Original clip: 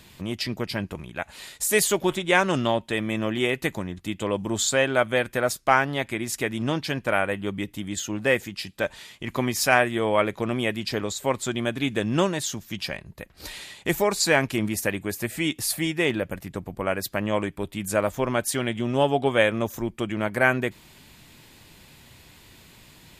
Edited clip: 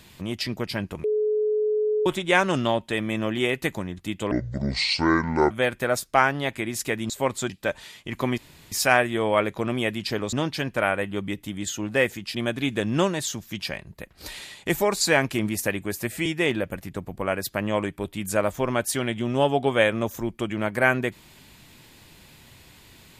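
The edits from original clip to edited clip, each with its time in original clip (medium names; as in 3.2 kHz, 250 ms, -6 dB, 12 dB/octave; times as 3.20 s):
1.04–2.06 s: bleep 426 Hz -20 dBFS
4.31–5.04 s: speed 61%
6.63–8.65 s: swap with 11.14–11.54 s
9.53 s: insert room tone 0.34 s
15.45–15.85 s: delete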